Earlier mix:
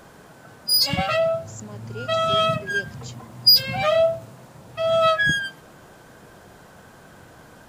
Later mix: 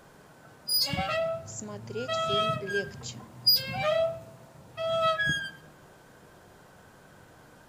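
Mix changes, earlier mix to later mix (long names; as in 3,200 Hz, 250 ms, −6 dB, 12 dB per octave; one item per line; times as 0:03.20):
background −8.5 dB
reverb: on, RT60 0.75 s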